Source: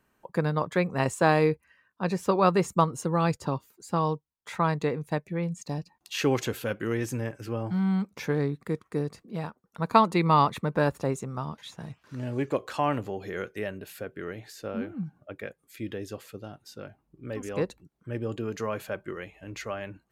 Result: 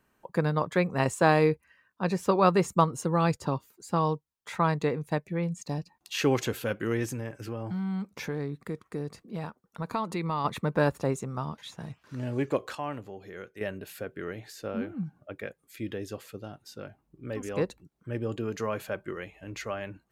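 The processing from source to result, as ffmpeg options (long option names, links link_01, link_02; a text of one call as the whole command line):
ffmpeg -i in.wav -filter_complex "[0:a]asplit=3[link_01][link_02][link_03];[link_01]afade=type=out:start_time=7.06:duration=0.02[link_04];[link_02]acompressor=threshold=-31dB:ratio=2.5:attack=3.2:release=140:knee=1:detection=peak,afade=type=in:start_time=7.06:duration=0.02,afade=type=out:start_time=10.44:duration=0.02[link_05];[link_03]afade=type=in:start_time=10.44:duration=0.02[link_06];[link_04][link_05][link_06]amix=inputs=3:normalize=0,asplit=3[link_07][link_08][link_09];[link_07]atrim=end=12.752[link_10];[link_08]atrim=start=12.748:end=13.612,asetpts=PTS-STARTPTS,volume=-8.5dB[link_11];[link_09]atrim=start=13.608[link_12];[link_10][link_11]acrossfade=duration=0.004:curve1=hsin:curve2=hsin[link_13];[link_13][link_12]acrossfade=duration=0.004:curve1=hsin:curve2=hsin" out.wav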